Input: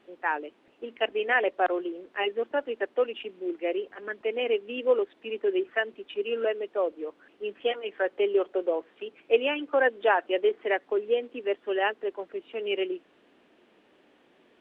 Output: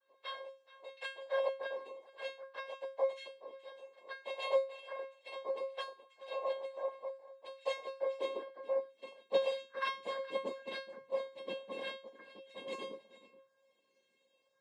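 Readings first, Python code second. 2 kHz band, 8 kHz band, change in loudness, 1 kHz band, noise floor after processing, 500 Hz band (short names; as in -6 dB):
-15.5 dB, n/a, -11.5 dB, -12.5 dB, -77 dBFS, -11.0 dB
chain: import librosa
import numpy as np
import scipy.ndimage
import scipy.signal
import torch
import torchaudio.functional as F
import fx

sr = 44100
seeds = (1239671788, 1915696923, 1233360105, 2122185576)

p1 = fx.phaser_stages(x, sr, stages=4, low_hz=140.0, high_hz=1800.0, hz=0.41, feedback_pct=25)
p2 = p1 + fx.echo_single(p1, sr, ms=426, db=-17.0, dry=0)
p3 = fx.noise_vocoder(p2, sr, seeds[0], bands=6)
p4 = fx.comb_fb(p3, sr, f0_hz=540.0, decay_s=0.32, harmonics='all', damping=0.0, mix_pct=100)
p5 = fx.rider(p4, sr, range_db=3, speed_s=2.0)
p6 = p4 + (p5 * 10.0 ** (-2.0 / 20.0))
p7 = fx.filter_sweep_highpass(p6, sr, from_hz=610.0, to_hz=150.0, start_s=7.46, end_s=9.78, q=1.5)
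y = p7 * 10.0 ** (3.0 / 20.0)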